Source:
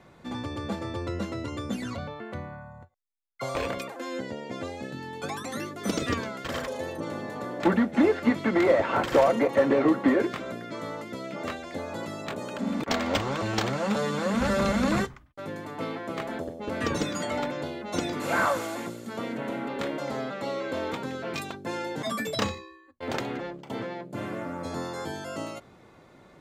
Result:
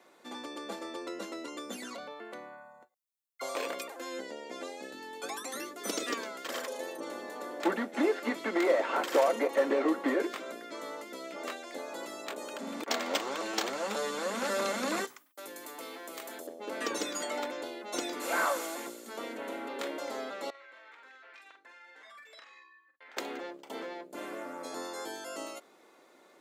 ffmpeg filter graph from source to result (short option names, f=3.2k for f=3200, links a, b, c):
-filter_complex "[0:a]asettb=1/sr,asplit=3[a][b][c];[a]atrim=end=15.074[d];[b]atrim=start=15.07:end=16.47,asetpts=PTS-STARTPTS,afade=t=in:d=0.004:c=qsin,afade=t=out:st=1.396:d=0.004:c=qsin,aemphasis=mode=production:type=75kf,acompressor=threshold=-37dB:ratio=2.5:attack=3.2:release=140:knee=1:detection=peak[e];[c]atrim=start=16.466[f];[d][e]acrossfade=d=0.004:c1=hsin:c2=qsin[g];[g][f]acrossfade=d=0.004:c1=qsin:c2=hsin,asettb=1/sr,asplit=3[h][i][j];[h]atrim=end=20.504[k];[i]atrim=start=20.5:end=23.17,asetpts=PTS-STARTPTS,afade=t=in:d=0.004:c=qsin,afade=t=out:st=2.666:d=0.004:c=qsin,bandpass=f=1.8k:t=q:w=2.2,acompressor=threshold=-46dB:ratio=10:attack=3.2:release=140:knee=1:detection=peak,asplit=2[l][m];[m]adelay=47,volume=-6.5dB[n];[l][n]amix=inputs=2:normalize=0,atrim=end_sample=117747[o];[j]atrim=start=23.166[p];[k][o]acrossfade=d=0.004:c1=hsin:c2=qsin[q];[q][p]acrossfade=d=0.004:c1=qsin:c2=hsin,highpass=f=290:w=0.5412,highpass=f=290:w=1.3066,highshelf=f=5.8k:g=10.5,volume=-5dB"